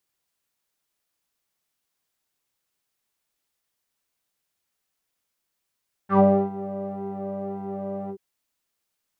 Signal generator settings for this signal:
subtractive patch with pulse-width modulation G3, oscillator 2 square, interval +12 semitones, detune 20 cents, sub −14.5 dB, filter lowpass, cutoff 380 Hz, Q 5.2, filter envelope 2 octaves, filter decay 0.13 s, attack 101 ms, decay 0.31 s, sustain −17 dB, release 0.07 s, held 2.01 s, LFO 1.8 Hz, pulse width 39%, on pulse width 6%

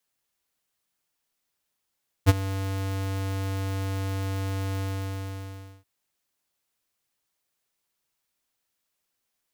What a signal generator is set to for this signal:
note with an ADSR envelope square 96.7 Hz, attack 33 ms, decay 29 ms, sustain −16.5 dB, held 2.54 s, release 1,040 ms −12.5 dBFS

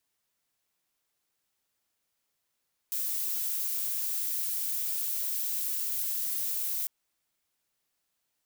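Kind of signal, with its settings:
noise violet, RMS −31.5 dBFS 3.95 s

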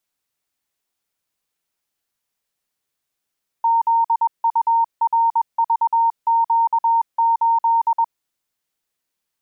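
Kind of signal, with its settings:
Morse code "ZURVQ8" 21 words per minute 920 Hz −13 dBFS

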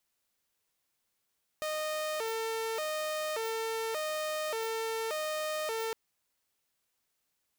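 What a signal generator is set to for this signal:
siren hi-lo 449–617 Hz 0.86 per second saw −29.5 dBFS 4.31 s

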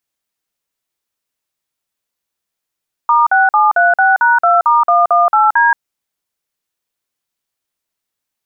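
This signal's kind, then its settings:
touch tones "*6736#2*118D", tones 176 ms, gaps 48 ms, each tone −10 dBFS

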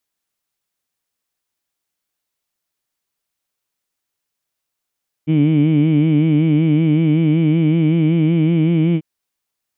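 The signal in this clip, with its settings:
vowel by formant synthesis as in heed, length 3.74 s, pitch 151 Hz, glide +1.5 semitones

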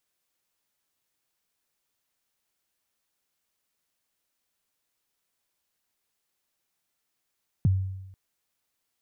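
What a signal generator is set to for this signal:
synth kick length 0.49 s, from 190 Hz, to 95 Hz, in 21 ms, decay 0.97 s, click off, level −16 dB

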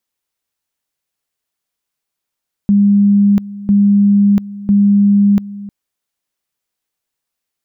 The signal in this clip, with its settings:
tone at two levels in turn 202 Hz −6.5 dBFS, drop 18 dB, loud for 0.69 s, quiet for 0.31 s, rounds 3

